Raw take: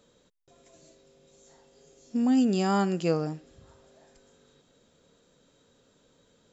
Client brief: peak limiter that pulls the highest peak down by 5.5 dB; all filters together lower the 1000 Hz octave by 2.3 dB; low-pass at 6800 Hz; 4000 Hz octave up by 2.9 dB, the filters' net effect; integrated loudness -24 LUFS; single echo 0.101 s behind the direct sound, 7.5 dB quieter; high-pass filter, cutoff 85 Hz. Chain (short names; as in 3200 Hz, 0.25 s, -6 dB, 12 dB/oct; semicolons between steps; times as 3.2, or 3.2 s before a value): HPF 85 Hz; LPF 6800 Hz; bell 1000 Hz -3.5 dB; bell 4000 Hz +5 dB; limiter -19 dBFS; echo 0.101 s -7.5 dB; gain +3.5 dB